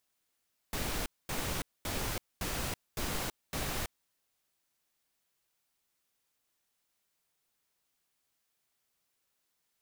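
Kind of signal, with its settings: noise bursts pink, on 0.33 s, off 0.23 s, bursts 6, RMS -35 dBFS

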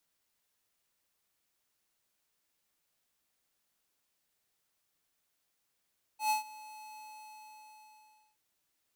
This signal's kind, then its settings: ADSR square 859 Hz, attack 0.112 s, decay 0.127 s, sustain -21 dB, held 0.78 s, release 1.4 s -28 dBFS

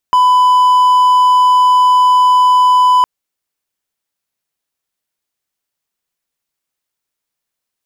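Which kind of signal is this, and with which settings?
tone triangle 1000 Hz -4 dBFS 2.91 s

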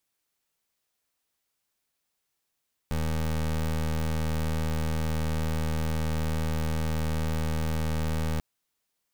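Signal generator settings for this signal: pulse 78.9 Hz, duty 23% -27.5 dBFS 5.49 s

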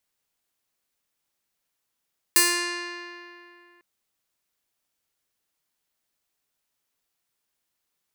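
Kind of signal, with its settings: plucked string F4, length 1.45 s, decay 2.70 s, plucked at 0.45, bright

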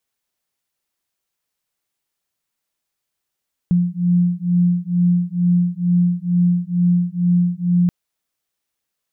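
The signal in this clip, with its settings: beating tones 175 Hz, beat 2.2 Hz, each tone -17 dBFS 4.18 s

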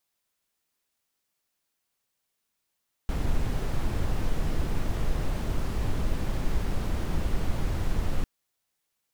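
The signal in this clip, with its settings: noise brown, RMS -25 dBFS 5.15 s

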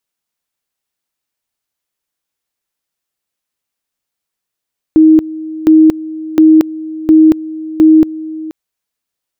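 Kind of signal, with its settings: two-level tone 315 Hz -2 dBFS, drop 18 dB, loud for 0.23 s, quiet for 0.48 s, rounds 5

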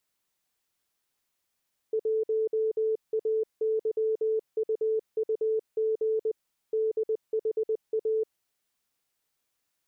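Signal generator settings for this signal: Morse "1AYUUG DHA" 20 wpm 439 Hz -23.5 dBFS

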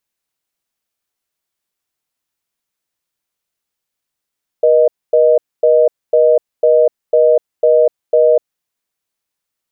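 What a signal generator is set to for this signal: call progress tone reorder tone, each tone -9.5 dBFS 3.88 s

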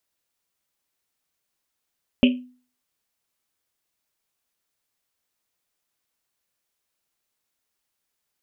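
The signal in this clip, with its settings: Risset drum, pitch 250 Hz, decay 0.41 s, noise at 2800 Hz, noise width 680 Hz, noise 20%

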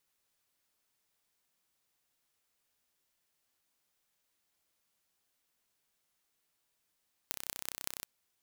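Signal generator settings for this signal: pulse train 31.9/s, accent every 6, -7 dBFS 0.75 s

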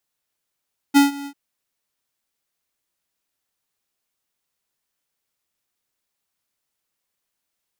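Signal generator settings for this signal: ADSR square 282 Hz, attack 28 ms, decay 0.142 s, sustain -21 dB, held 0.32 s, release 74 ms -10.5 dBFS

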